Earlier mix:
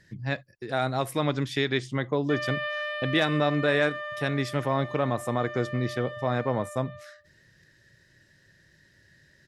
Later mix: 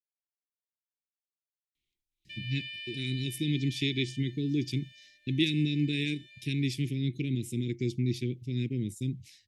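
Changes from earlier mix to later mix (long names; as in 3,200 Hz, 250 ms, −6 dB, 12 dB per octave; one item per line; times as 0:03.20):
speech: entry +2.25 s
master: add Chebyshev band-stop filter 360–2,300 Hz, order 4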